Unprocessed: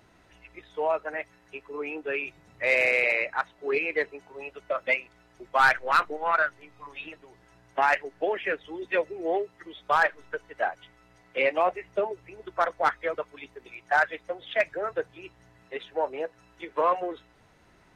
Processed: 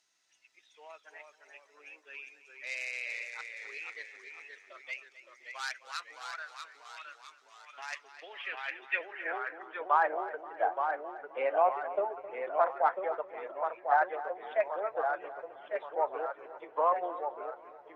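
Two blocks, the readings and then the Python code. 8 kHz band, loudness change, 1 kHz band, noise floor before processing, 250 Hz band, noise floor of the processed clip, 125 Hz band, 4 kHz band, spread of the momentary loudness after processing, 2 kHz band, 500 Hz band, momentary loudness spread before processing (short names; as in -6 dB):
n/a, -6.5 dB, -4.0 dB, -60 dBFS, -13.5 dB, -65 dBFS, under -20 dB, -7.5 dB, 21 LU, -11.0 dB, -6.0 dB, 18 LU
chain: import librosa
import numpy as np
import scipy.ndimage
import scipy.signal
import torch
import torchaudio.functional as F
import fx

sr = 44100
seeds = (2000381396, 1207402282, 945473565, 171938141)

y = fx.echo_pitch(x, sr, ms=285, semitones=-1, count=3, db_per_echo=-6.0)
y = fx.echo_feedback(y, sr, ms=263, feedback_pct=49, wet_db=-15.0)
y = fx.filter_sweep_bandpass(y, sr, from_hz=6100.0, to_hz=800.0, start_s=7.87, end_s=10.1, q=2.0)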